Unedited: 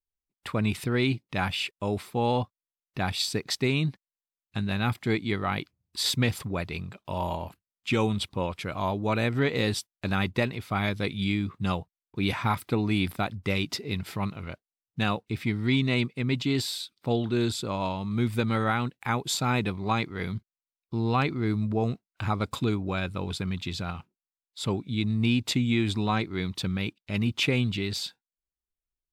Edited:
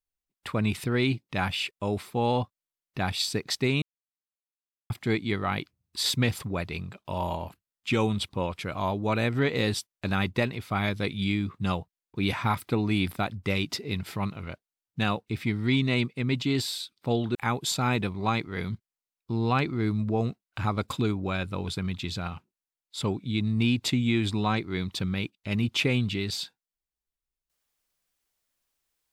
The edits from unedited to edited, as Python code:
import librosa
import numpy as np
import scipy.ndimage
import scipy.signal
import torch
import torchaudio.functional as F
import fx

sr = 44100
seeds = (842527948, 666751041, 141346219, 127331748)

y = fx.edit(x, sr, fx.silence(start_s=3.82, length_s=1.08),
    fx.cut(start_s=17.35, length_s=1.63), tone=tone)